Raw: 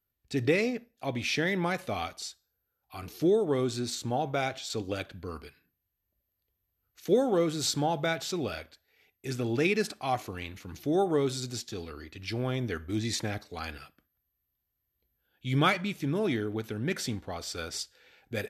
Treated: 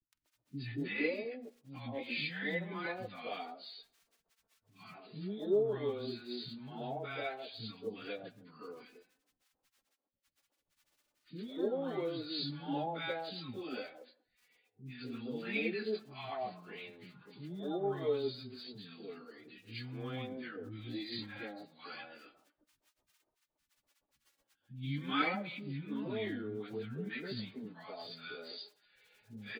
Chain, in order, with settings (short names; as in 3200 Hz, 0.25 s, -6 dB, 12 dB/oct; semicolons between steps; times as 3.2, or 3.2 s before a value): FFT band-pass 100–4900 Hz; crackle 21/s -40 dBFS; flange 0.14 Hz, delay 3.2 ms, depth 1.7 ms, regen +43%; plain phase-vocoder stretch 1.6×; three bands offset in time lows, highs, mids 0.11/0.24 s, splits 240/930 Hz; gain -1 dB